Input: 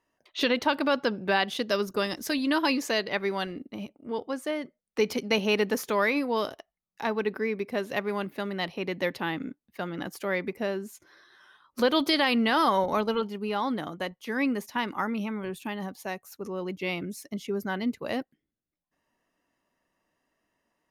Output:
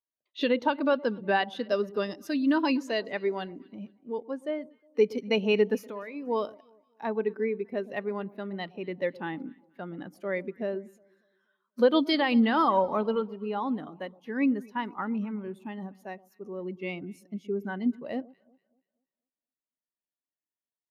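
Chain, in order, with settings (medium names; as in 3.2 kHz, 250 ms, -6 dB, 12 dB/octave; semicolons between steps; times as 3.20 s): 5.77–6.27 s: compression 6:1, threshold -31 dBFS, peak gain reduction 10.5 dB; echo whose repeats swap between lows and highs 120 ms, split 1 kHz, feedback 67%, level -14 dB; spectral contrast expander 1.5:1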